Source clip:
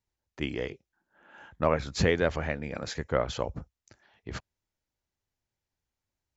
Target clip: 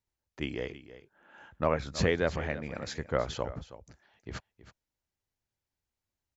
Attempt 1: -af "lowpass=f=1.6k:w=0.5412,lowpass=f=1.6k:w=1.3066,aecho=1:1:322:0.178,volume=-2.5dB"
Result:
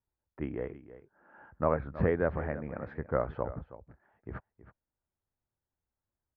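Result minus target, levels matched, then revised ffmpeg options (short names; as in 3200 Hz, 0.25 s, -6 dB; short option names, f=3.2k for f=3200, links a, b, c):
2000 Hz band -4.5 dB
-af "aecho=1:1:322:0.178,volume=-2.5dB"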